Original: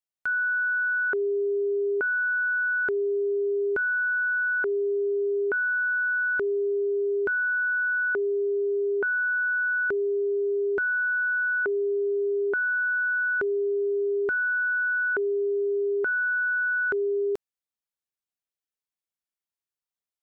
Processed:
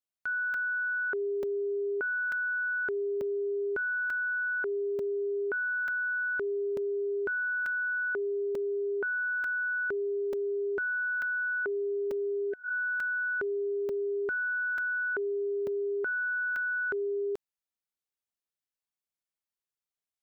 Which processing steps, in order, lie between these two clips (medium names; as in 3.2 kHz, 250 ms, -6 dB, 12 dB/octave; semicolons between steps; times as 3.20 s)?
spectral replace 12.40–12.67 s, 720–1500 Hz both; peak limiter -25 dBFS, peak gain reduction 4.5 dB; crackling interface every 0.89 s, samples 128, zero, from 0.54 s; trim -3 dB